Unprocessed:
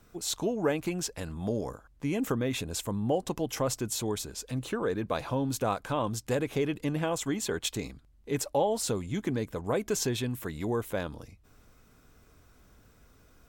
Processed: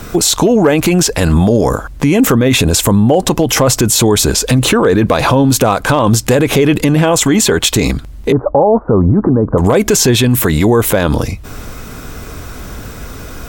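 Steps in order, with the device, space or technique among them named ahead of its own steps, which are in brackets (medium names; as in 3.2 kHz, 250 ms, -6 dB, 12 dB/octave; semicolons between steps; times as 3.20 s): loud club master (compression 2:1, threshold -33 dBFS, peak gain reduction 6.5 dB; hard clipper -24.5 dBFS, distortion -31 dB; loudness maximiser +33 dB); 8.32–9.58 s: steep low-pass 1.3 kHz 48 dB/octave; trim -1.5 dB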